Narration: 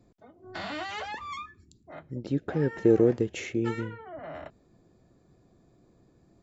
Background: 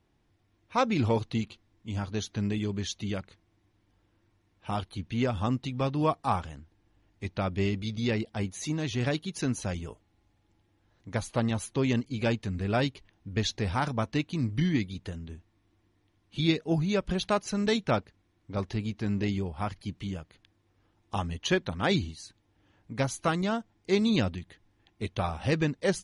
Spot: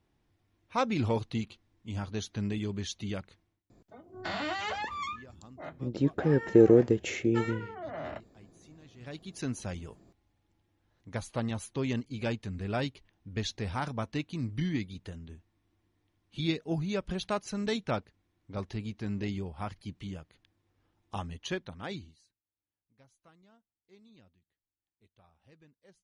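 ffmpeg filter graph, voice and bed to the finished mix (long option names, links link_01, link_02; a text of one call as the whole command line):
ffmpeg -i stem1.wav -i stem2.wav -filter_complex "[0:a]adelay=3700,volume=1.5dB[link_01];[1:a]volume=16.5dB,afade=type=out:start_time=3.38:duration=0.25:silence=0.0841395,afade=type=in:start_time=8.98:duration=0.47:silence=0.105925,afade=type=out:start_time=21.07:duration=1.31:silence=0.0354813[link_02];[link_01][link_02]amix=inputs=2:normalize=0" out.wav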